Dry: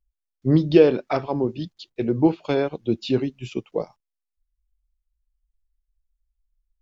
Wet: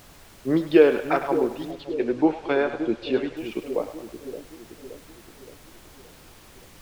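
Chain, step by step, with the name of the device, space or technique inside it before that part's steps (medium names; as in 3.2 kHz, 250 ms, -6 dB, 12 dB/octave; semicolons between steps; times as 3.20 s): horn gramophone (band-pass 300–3300 Hz; peaking EQ 1.6 kHz +7 dB; wow and flutter; pink noise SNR 23 dB); 1.71–3.37 s: low-pass 5.3 kHz 12 dB/octave; two-band feedback delay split 560 Hz, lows 571 ms, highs 102 ms, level -10 dB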